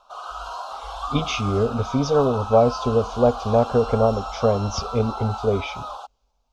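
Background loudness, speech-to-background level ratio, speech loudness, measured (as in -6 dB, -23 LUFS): -32.0 LUFS, 10.0 dB, -22.0 LUFS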